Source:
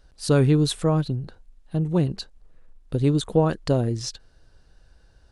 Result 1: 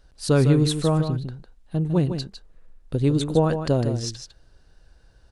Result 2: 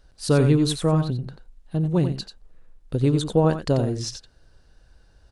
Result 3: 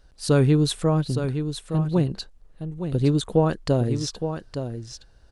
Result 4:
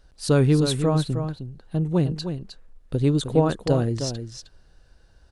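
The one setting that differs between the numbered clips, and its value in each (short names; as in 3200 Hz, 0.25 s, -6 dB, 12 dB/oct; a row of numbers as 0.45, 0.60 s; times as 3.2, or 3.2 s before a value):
echo, time: 154, 89, 865, 310 ms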